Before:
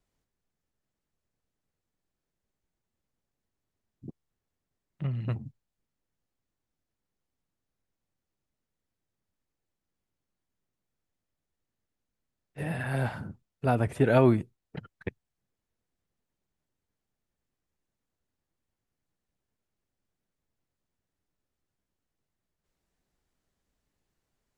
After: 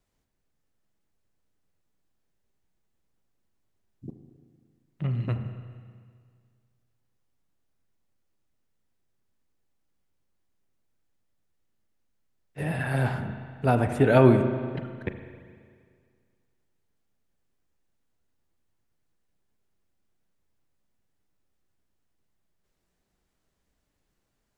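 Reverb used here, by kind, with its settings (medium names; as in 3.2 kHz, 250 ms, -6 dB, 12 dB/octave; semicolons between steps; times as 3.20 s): spring tank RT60 2 s, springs 33/38 ms, chirp 20 ms, DRR 7 dB; trim +3 dB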